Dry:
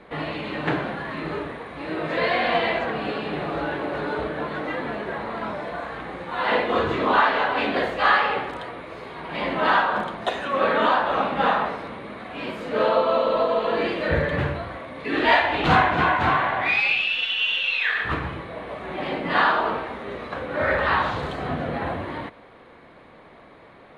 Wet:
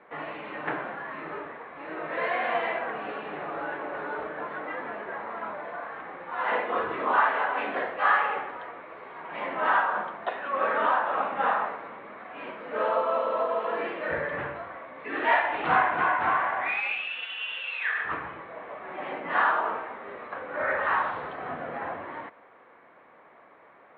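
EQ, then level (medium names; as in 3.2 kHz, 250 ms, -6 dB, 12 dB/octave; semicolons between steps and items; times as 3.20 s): band-pass filter 1.5 kHz, Q 0.66; distance through air 490 m; 0.0 dB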